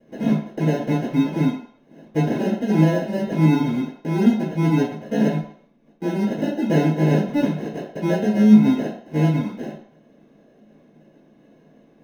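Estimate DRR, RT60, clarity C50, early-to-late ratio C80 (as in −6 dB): −11.0 dB, 0.60 s, 5.0 dB, 8.5 dB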